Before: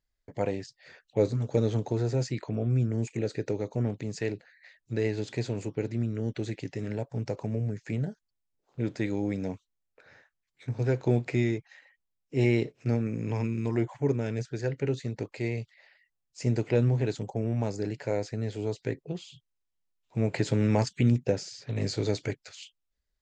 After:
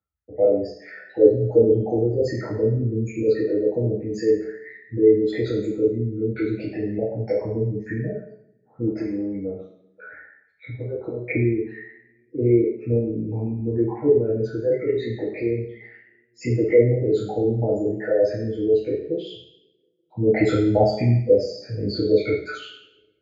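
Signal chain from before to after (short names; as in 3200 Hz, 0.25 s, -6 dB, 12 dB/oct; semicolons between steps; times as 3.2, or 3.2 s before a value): formant sharpening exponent 3; bell 1300 Hz +14 dB 0.21 oct; 8.87–11.27 compressor, threshold -33 dBFS, peak gain reduction 13 dB; BPF 480–2100 Hz; reverb RT60 0.75 s, pre-delay 3 ms, DRR -13 dB; gain +1 dB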